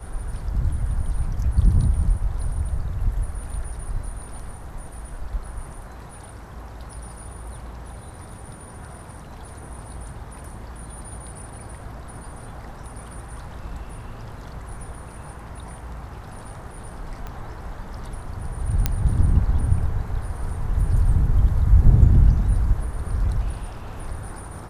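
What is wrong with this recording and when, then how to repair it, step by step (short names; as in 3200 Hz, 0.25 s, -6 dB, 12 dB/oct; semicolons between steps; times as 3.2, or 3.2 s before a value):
17.27 pop -21 dBFS
18.86 pop -6 dBFS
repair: de-click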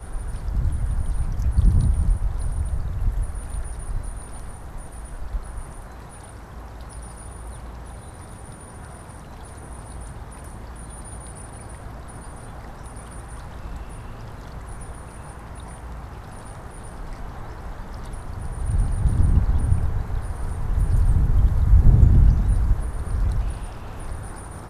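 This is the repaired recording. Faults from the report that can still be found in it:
none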